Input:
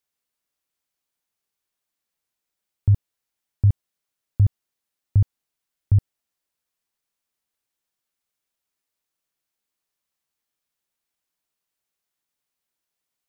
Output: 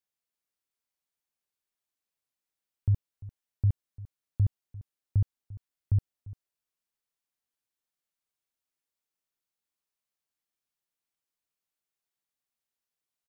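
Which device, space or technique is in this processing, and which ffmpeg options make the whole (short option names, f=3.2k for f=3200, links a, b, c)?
ducked delay: -filter_complex "[0:a]asplit=3[a][b][c];[b]adelay=346,volume=-8dB[d];[c]apad=whole_len=601187[e];[d][e]sidechaincompress=threshold=-30dB:ratio=8:attack=16:release=735[f];[a][f]amix=inputs=2:normalize=0,volume=-8dB"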